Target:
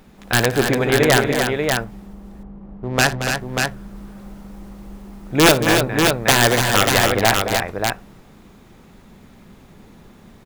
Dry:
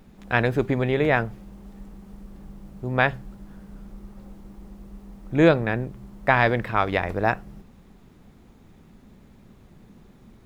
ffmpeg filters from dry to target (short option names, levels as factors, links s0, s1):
-filter_complex "[0:a]lowshelf=f=360:g=-7,acontrast=28,aeval=exprs='(mod(2.24*val(0)+1,2)-1)/2.24':c=same,asettb=1/sr,asplit=3[s0][s1][s2];[s0]atrim=end=1.844[s3];[s1]atrim=start=1.84:end=3.36,asetpts=PTS-STARTPTS,afade=t=in:d=0.004:c=qsin,afade=t=out:st=1.516:d=0.004:c=qsin,adynamicsmooth=sensitivity=4.5:basefreq=820[s4];[s2]atrim=start=3.356[s5];[s3][s4]acrossfade=d=0.004:c1=hsin:c2=qsin[s6];[s6][s5]acrossfade=d=0.004:c1=qsin:c2=hsin,aecho=1:1:58|226|290|589:0.158|0.299|0.473|0.596,volume=1.33"